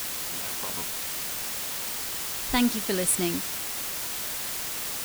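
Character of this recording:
tremolo saw up 0.52 Hz, depth 65%
a quantiser's noise floor 6 bits, dither triangular

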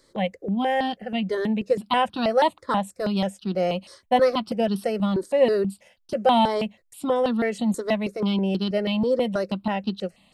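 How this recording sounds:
notches that jump at a steady rate 6.2 Hz 740–2,100 Hz

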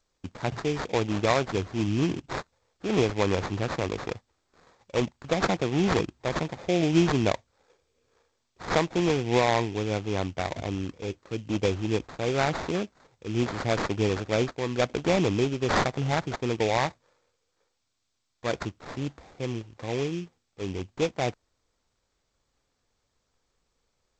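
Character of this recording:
aliases and images of a low sample rate 2,900 Hz, jitter 20%
G.722

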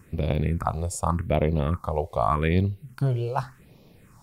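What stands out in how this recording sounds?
phaser sweep stages 4, 0.85 Hz, lowest notch 240–1,500 Hz

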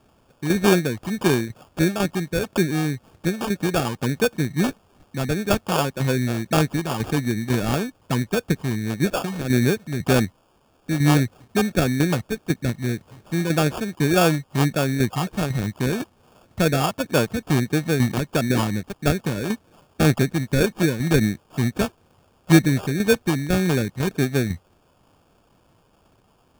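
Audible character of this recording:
tremolo saw down 2 Hz, depth 60%
a quantiser's noise floor 10 bits, dither triangular
phaser sweep stages 12, 1.7 Hz, lowest notch 620–1,500 Hz
aliases and images of a low sample rate 2,000 Hz, jitter 0%

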